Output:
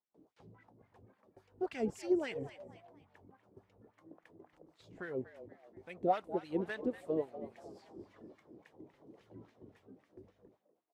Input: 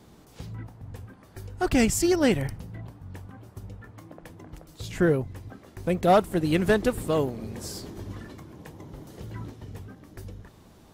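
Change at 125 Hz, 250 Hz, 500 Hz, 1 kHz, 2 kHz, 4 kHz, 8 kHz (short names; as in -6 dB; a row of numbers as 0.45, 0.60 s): -21.5 dB, -14.0 dB, -12.0 dB, -11.5 dB, -15.0 dB, -19.5 dB, under -25 dB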